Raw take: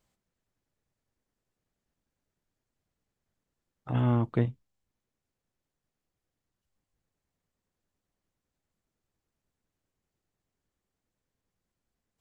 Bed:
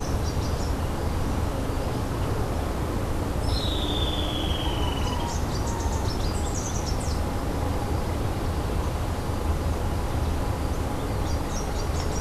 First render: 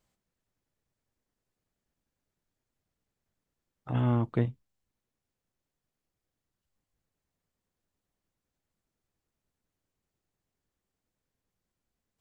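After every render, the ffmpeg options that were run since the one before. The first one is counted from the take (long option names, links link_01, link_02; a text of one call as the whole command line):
ffmpeg -i in.wav -af "volume=-1dB" out.wav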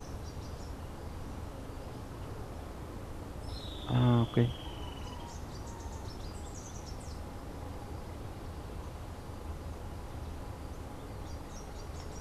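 ffmpeg -i in.wav -i bed.wav -filter_complex "[1:a]volume=-16dB[link_01];[0:a][link_01]amix=inputs=2:normalize=0" out.wav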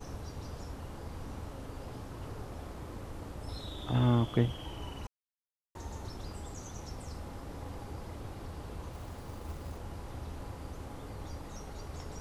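ffmpeg -i in.wav -filter_complex "[0:a]asettb=1/sr,asplit=3[link_01][link_02][link_03];[link_01]atrim=end=8.934[link_04];[link_02]atrim=start=8.93:end=9.77,asetpts=PTS-STARTPTS,afade=type=in:duration=0.004:curve=qsin,afade=type=out:start_time=0.836:duration=0.004:curve=qsin,acrusher=bits=5:mode=log:mix=0:aa=0.000001[link_05];[link_03]atrim=start=9.766[link_06];[link_04][link_05]acrossfade=duration=0.004:curve1=hsin:curve2=qsin[link_07];[link_07][link_06]acrossfade=duration=0.004:curve1=qsin:curve2=hsin,asplit=3[link_08][link_09][link_10];[link_08]atrim=end=5.07,asetpts=PTS-STARTPTS,afade=type=out:start_time=5.066:duration=0.004:curve=hsin[link_11];[link_09]atrim=start=5.07:end=5.75,asetpts=PTS-STARTPTS,volume=0[link_12];[link_10]atrim=start=5.75,asetpts=PTS-STARTPTS,afade=type=in:duration=0.004:curve=hsin[link_13];[link_11][link_12][link_13]concat=n=3:v=0:a=1" out.wav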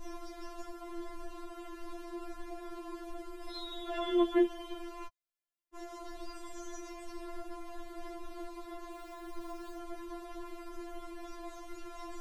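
ffmpeg -i in.wav -filter_complex "[0:a]asplit=2[link_01][link_02];[link_02]adynamicsmooth=sensitivity=2.5:basefreq=4200,volume=-2.5dB[link_03];[link_01][link_03]amix=inputs=2:normalize=0,afftfilt=real='re*4*eq(mod(b,16),0)':imag='im*4*eq(mod(b,16),0)':win_size=2048:overlap=0.75" out.wav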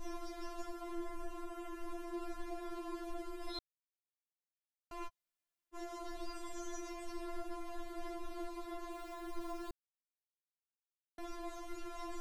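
ffmpeg -i in.wav -filter_complex "[0:a]asettb=1/sr,asplit=3[link_01][link_02][link_03];[link_01]atrim=end=0.954[link_04];[link_02]atrim=start=0.95:end=2.14,asetpts=PTS-STARTPTS,afade=type=in:duration=0.004:curve=qsin,afade=type=out:start_time=1.186:duration=0.004:curve=qsin,equalizer=frequency=4200:width_type=o:width=0.66:gain=-7[link_05];[link_03]atrim=start=2.136[link_06];[link_04][link_05]acrossfade=duration=0.004:curve1=hsin:curve2=qsin[link_07];[link_07][link_06]acrossfade=duration=0.004:curve1=qsin:curve2=hsin,asplit=5[link_08][link_09][link_10][link_11][link_12];[link_08]atrim=end=3.59,asetpts=PTS-STARTPTS,afade=type=out:start_time=3.586:duration=0.004:curve=hsin[link_13];[link_09]atrim=start=3.59:end=4.91,asetpts=PTS-STARTPTS,volume=0[link_14];[link_10]atrim=start=4.91:end=9.71,asetpts=PTS-STARTPTS,afade=type=in:duration=0.004:curve=hsin,afade=type=out:start_time=4.796:duration=0.004:curve=hsin[link_15];[link_11]atrim=start=9.71:end=11.18,asetpts=PTS-STARTPTS,volume=0[link_16];[link_12]atrim=start=11.18,asetpts=PTS-STARTPTS,afade=type=in:duration=0.004:curve=hsin[link_17];[link_13][link_14][link_15][link_16][link_17]concat=n=5:v=0:a=1" out.wav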